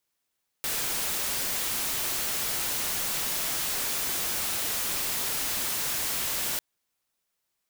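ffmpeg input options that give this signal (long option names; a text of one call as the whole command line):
ffmpeg -f lavfi -i "anoisesrc=color=white:amplitude=0.058:duration=5.95:sample_rate=44100:seed=1" out.wav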